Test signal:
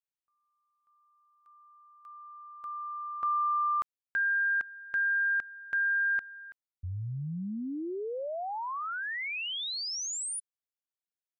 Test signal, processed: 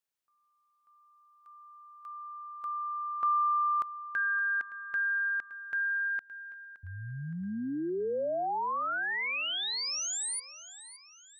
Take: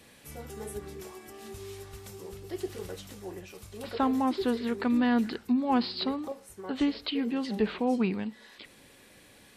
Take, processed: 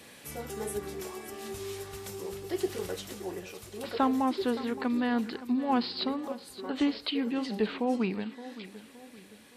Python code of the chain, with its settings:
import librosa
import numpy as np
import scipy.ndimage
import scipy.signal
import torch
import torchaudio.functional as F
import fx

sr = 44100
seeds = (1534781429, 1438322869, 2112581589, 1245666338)

p1 = fx.low_shelf(x, sr, hz=96.0, db=-11.5)
p2 = fx.rider(p1, sr, range_db=5, speed_s=2.0)
y = p2 + fx.echo_feedback(p2, sr, ms=568, feedback_pct=43, wet_db=-15.5, dry=0)